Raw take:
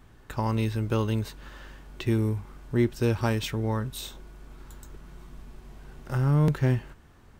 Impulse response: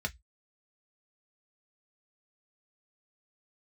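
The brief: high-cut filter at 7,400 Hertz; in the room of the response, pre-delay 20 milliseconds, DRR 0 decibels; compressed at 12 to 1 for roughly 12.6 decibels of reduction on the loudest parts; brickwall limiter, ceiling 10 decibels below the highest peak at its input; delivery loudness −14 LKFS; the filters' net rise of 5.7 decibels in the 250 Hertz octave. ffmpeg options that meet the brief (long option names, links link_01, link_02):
-filter_complex "[0:a]lowpass=7400,equalizer=frequency=250:width_type=o:gain=7.5,acompressor=threshold=-27dB:ratio=12,alimiter=level_in=3.5dB:limit=-24dB:level=0:latency=1,volume=-3.5dB,asplit=2[link_01][link_02];[1:a]atrim=start_sample=2205,adelay=20[link_03];[link_02][link_03]afir=irnorm=-1:irlink=0,volume=-3.5dB[link_04];[link_01][link_04]amix=inputs=2:normalize=0,volume=17.5dB"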